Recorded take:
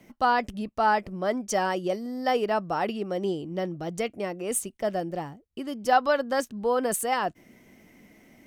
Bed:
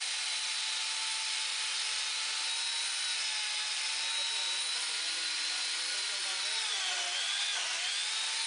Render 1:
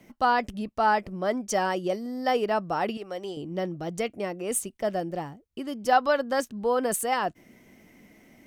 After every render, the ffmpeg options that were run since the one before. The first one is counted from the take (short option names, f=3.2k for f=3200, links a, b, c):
-filter_complex "[0:a]asettb=1/sr,asplit=3[a][b][c];[a]atrim=end=2.974[d];[b]atrim=start=2.97:end=3.37,asetpts=PTS-STARTPTS,afade=t=in:d=0.004:c=qsin,afade=t=out:st=0.396:d=0.004:c=qsin,equalizer=f=230:t=o:w=1.6:g=-14[e];[c]atrim=start=3.366[f];[d][e]acrossfade=d=0.004:c1=hsin:c2=qsin[g];[g][f]acrossfade=d=0.004:c1=qsin:c2=hsin"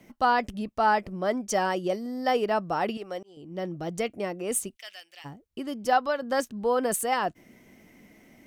-filter_complex "[0:a]asplit=3[a][b][c];[a]afade=t=out:st=4.75:d=0.02[d];[b]highpass=f=2.7k:t=q:w=2,afade=t=in:st=4.75:d=0.02,afade=t=out:st=5.24:d=0.02[e];[c]afade=t=in:st=5.24:d=0.02[f];[d][e][f]amix=inputs=3:normalize=0,asplit=3[g][h][i];[g]atrim=end=3.23,asetpts=PTS-STARTPTS,afade=t=out:st=3.226:d=0.004:c=hsin[j];[h]atrim=start=3.23:end=6.22,asetpts=PTS-STARTPTS,afade=t=in:d=0.54,afade=t=out:st=2.57:d=0.42:silence=0.473151[k];[i]atrim=start=6.22,asetpts=PTS-STARTPTS,afade=t=in:d=0.004:c=hsin:silence=0.473151[l];[j][k][l]concat=n=3:v=0:a=1"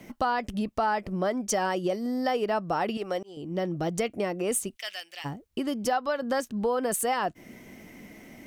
-filter_complex "[0:a]asplit=2[a][b];[b]alimiter=limit=-19.5dB:level=0:latency=1:release=156,volume=2dB[c];[a][c]amix=inputs=2:normalize=0,acompressor=threshold=-27dB:ratio=2.5"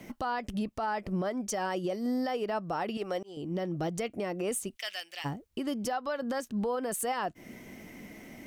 -af "alimiter=limit=-23.5dB:level=0:latency=1:release=200"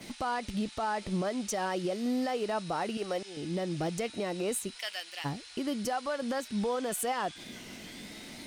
-filter_complex "[1:a]volume=-16dB[a];[0:a][a]amix=inputs=2:normalize=0"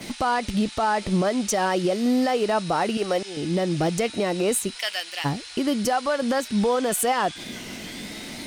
-af "volume=9.5dB"